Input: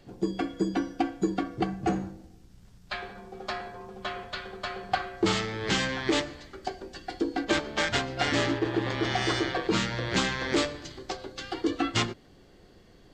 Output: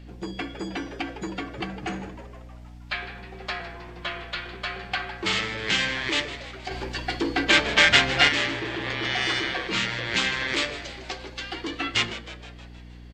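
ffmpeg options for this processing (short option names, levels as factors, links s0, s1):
-filter_complex "[0:a]asettb=1/sr,asplit=3[s0][s1][s2];[s0]atrim=end=3.604[s3];[s1]atrim=start=3.6:end=4.55,asetpts=PTS-STARTPTS,afade=t=in:d=0.004:c=qsin,afade=t=out:st=0.946:d=0.004:c=qsin,afreqshift=-26[s4];[s2]atrim=start=4.546[s5];[s3][s4]acrossfade=d=0.004:c1=hsin:c2=qsin[s6];[s6][s5]acrossfade=d=0.004:c1=qsin:c2=hsin,asplit=2[s7][s8];[s8]asplit=6[s9][s10][s11][s12][s13][s14];[s9]adelay=157,afreqshift=110,volume=0.178[s15];[s10]adelay=314,afreqshift=220,volume=0.101[s16];[s11]adelay=471,afreqshift=330,volume=0.0575[s17];[s12]adelay=628,afreqshift=440,volume=0.0331[s18];[s13]adelay=785,afreqshift=550,volume=0.0188[s19];[s14]adelay=942,afreqshift=660,volume=0.0107[s20];[s15][s16][s17][s18][s19][s20]amix=inputs=6:normalize=0[s21];[s7][s21]amix=inputs=2:normalize=0,aeval=exprs='val(0)+0.00891*(sin(2*PI*60*n/s)+sin(2*PI*2*60*n/s)/2+sin(2*PI*3*60*n/s)/3+sin(2*PI*4*60*n/s)/4+sin(2*PI*5*60*n/s)/5)':c=same,acrossover=split=1700[s22][s23];[s22]asoftclip=type=tanh:threshold=0.0473[s24];[s24][s23]amix=inputs=2:normalize=0,asplit=3[s25][s26][s27];[s25]afade=t=out:st=6.7:d=0.02[s28];[s26]acontrast=89,afade=t=in:st=6.7:d=0.02,afade=t=out:st=8.27:d=0.02[s29];[s27]afade=t=in:st=8.27:d=0.02[s30];[s28][s29][s30]amix=inputs=3:normalize=0,equalizer=f=2400:t=o:w=1.5:g=10,volume=0.841"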